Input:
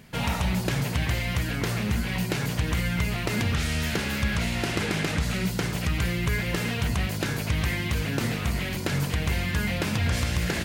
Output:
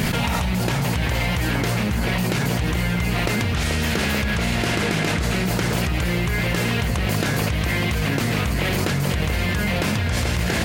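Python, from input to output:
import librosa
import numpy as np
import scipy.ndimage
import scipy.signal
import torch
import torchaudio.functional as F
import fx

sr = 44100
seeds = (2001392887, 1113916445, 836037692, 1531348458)

p1 = x + fx.echo_banded(x, sr, ms=436, feedback_pct=77, hz=690.0, wet_db=-4, dry=0)
y = fx.env_flatten(p1, sr, amount_pct=100)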